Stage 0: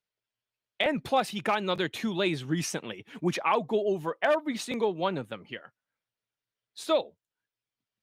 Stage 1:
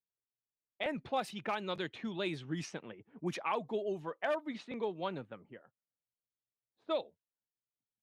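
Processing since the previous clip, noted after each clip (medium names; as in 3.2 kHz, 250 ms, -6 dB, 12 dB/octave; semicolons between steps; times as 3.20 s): level-controlled noise filter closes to 520 Hz, open at -23 dBFS; trim -9 dB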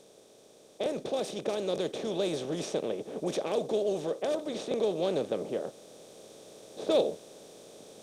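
spectral levelling over time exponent 0.4; gain riding 2 s; ten-band graphic EQ 500 Hz +11 dB, 1 kHz -9 dB, 2 kHz -9 dB, 4 kHz +4 dB, 8 kHz +10 dB; trim -3.5 dB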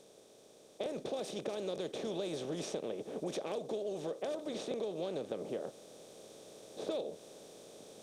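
compression 10:1, threshold -31 dBFS, peak gain reduction 11 dB; trim -3 dB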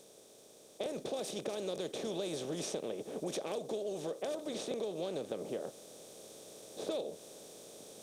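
treble shelf 7.2 kHz +10.5 dB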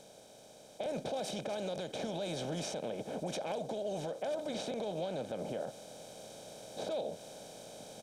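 low-pass 3.9 kHz 6 dB/octave; comb 1.3 ms, depth 61%; peak limiter -33.5 dBFS, peak gain reduction 7.5 dB; trim +4.5 dB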